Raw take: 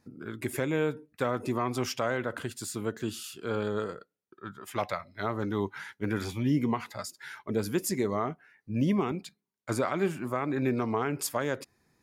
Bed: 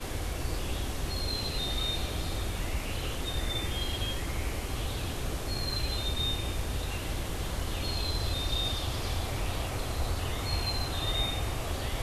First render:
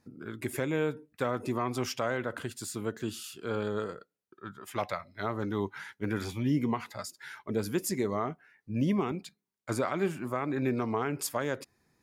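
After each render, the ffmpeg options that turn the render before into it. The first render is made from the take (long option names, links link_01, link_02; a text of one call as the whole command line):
ffmpeg -i in.wav -af "volume=-1.5dB" out.wav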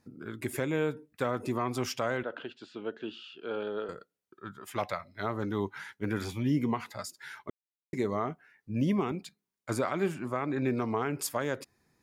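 ffmpeg -i in.wav -filter_complex "[0:a]asettb=1/sr,asplit=3[link_01][link_02][link_03];[link_01]atrim=end=2.234[link_04];[link_02]atrim=start=2.23:end=3.89,asetpts=PTS-STARTPTS,afade=type=in:duration=0.004:curve=qsin,afade=type=out:start_time=1.656:duration=0.004:curve=qsin,highpass=310,equalizer=frequency=1100:width_type=q:width=4:gain=-7,equalizer=frequency=2000:width_type=q:width=4:gain=-9,equalizer=frequency=2900:width_type=q:width=4:gain=5,lowpass=frequency=3400:width=0.5412,lowpass=frequency=3400:width=1.3066[link_05];[link_03]atrim=start=3.886[link_06];[link_04][link_05]acrossfade=duration=0.004:curve1=hsin:curve2=qsin[link_07];[link_07][link_06]acrossfade=duration=0.004:curve1=qsin:curve2=hsin,asettb=1/sr,asplit=3[link_08][link_09][link_10];[link_08]atrim=end=10.144[link_11];[link_09]atrim=start=10.14:end=10.7,asetpts=PTS-STARTPTS,afade=type=in:duration=0.004:curve=qsin,afade=type=out:start_time=0.556:duration=0.004:curve=qsin,lowpass=8700[link_12];[link_10]atrim=start=10.696[link_13];[link_11][link_12]acrossfade=duration=0.004:curve1=hsin:curve2=qsin[link_14];[link_14][link_13]acrossfade=duration=0.004:curve1=qsin:curve2=hsin,asplit=3[link_15][link_16][link_17];[link_15]atrim=end=7.5,asetpts=PTS-STARTPTS,afade=type=out:start_time=7.496:duration=0.004:curve=hsin[link_18];[link_16]atrim=start=7.5:end=7.93,asetpts=PTS-STARTPTS,volume=0[link_19];[link_17]atrim=start=7.93,asetpts=PTS-STARTPTS,afade=type=in:duration=0.004:curve=hsin[link_20];[link_18][link_19][link_20]concat=n=3:v=0:a=1" out.wav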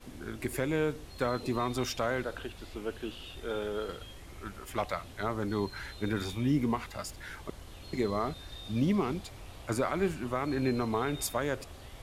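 ffmpeg -i in.wav -i bed.wav -filter_complex "[1:a]volume=-15dB[link_01];[0:a][link_01]amix=inputs=2:normalize=0" out.wav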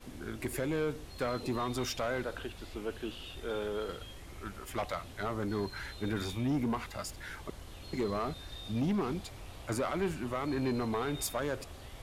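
ffmpeg -i in.wav -af "asoftclip=type=tanh:threshold=-25.5dB" out.wav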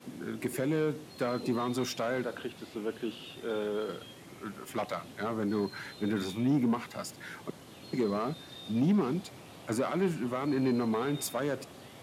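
ffmpeg -i in.wav -af "highpass=frequency=150:width=0.5412,highpass=frequency=150:width=1.3066,lowshelf=frequency=300:gain=8.5" out.wav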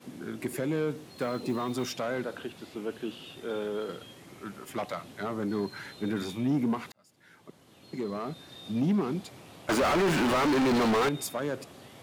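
ffmpeg -i in.wav -filter_complex "[0:a]asettb=1/sr,asplit=3[link_01][link_02][link_03];[link_01]atrim=end=0.974[link_04];[link_02]atrim=start=0.97:end=1.87,asetpts=PTS-STARTPTS,afade=type=in:duration=0.004:curve=qsin,afade=type=out:start_time=0.896:duration=0.004:curve=qsin,acrusher=bits=8:mode=log:mix=0:aa=0.000001[link_05];[link_03]atrim=start=1.866[link_06];[link_04][link_05]acrossfade=duration=0.004:curve1=hsin:curve2=qsin[link_07];[link_07][link_06]acrossfade=duration=0.004:curve1=qsin:curve2=hsin,asettb=1/sr,asplit=3[link_08][link_09][link_10];[link_08]atrim=end=9.694[link_11];[link_09]atrim=start=9.69:end=11.09,asetpts=PTS-STARTPTS,afade=type=in:duration=0.004:curve=qsin,afade=type=out:start_time=1.396:duration=0.004:curve=qsin,asplit=2[link_12][link_13];[link_13]highpass=frequency=720:poles=1,volume=41dB,asoftclip=type=tanh:threshold=-18.5dB[link_14];[link_12][link_14]amix=inputs=2:normalize=0,lowpass=frequency=2700:poles=1,volume=-6dB[link_15];[link_10]atrim=start=11.086[link_16];[link_11][link_15]acrossfade=duration=0.004:curve1=hsin:curve2=qsin[link_17];[link_17][link_16]acrossfade=duration=0.004:curve1=qsin:curve2=hsin,asplit=2[link_18][link_19];[link_18]atrim=end=6.92,asetpts=PTS-STARTPTS,afade=type=out:start_time=6.916:duration=0.004:curve=hsin[link_20];[link_19]atrim=start=6.92,asetpts=PTS-STARTPTS,afade=type=in:duration=1.79[link_21];[link_20][link_21]concat=n=2:v=0:a=1" out.wav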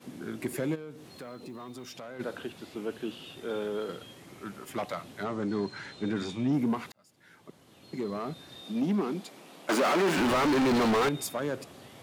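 ffmpeg -i in.wav -filter_complex "[0:a]asplit=3[link_01][link_02][link_03];[link_01]afade=type=out:start_time=0.74:duration=0.02[link_04];[link_02]acompressor=threshold=-45dB:ratio=2.5:attack=3.2:release=140:knee=1:detection=peak,afade=type=in:start_time=0.74:duration=0.02,afade=type=out:start_time=2.19:duration=0.02[link_05];[link_03]afade=type=in:start_time=2.19:duration=0.02[link_06];[link_04][link_05][link_06]amix=inputs=3:normalize=0,asettb=1/sr,asplit=3[link_07][link_08][link_09];[link_07]atrim=end=5.244[link_10];[link_08]atrim=start=5.24:end=6.53,asetpts=PTS-STARTPTS,afade=type=in:duration=0.004:curve=qsin,afade=type=out:start_time=1.286:duration=0.004:curve=qsin,lowpass=frequency=8300:width=0.5412,lowpass=frequency=8300:width=1.3066[link_11];[link_09]atrim=start=6.526[link_12];[link_10][link_11]acrossfade=duration=0.004:curve1=hsin:curve2=qsin[link_13];[link_13][link_12]acrossfade=duration=0.004:curve1=qsin:curve2=hsin,asettb=1/sr,asplit=3[link_14][link_15][link_16];[link_14]atrim=end=8.614[link_17];[link_15]atrim=start=8.61:end=10.18,asetpts=PTS-STARTPTS,afade=type=in:duration=0.004:curve=qsin,afade=type=out:start_time=1.566:duration=0.004:curve=qsin,highpass=frequency=190:width=0.5412,highpass=frequency=190:width=1.3066[link_18];[link_16]atrim=start=10.176[link_19];[link_17][link_18]acrossfade=duration=0.004:curve1=hsin:curve2=qsin[link_20];[link_20][link_19]acrossfade=duration=0.004:curve1=qsin:curve2=hsin" out.wav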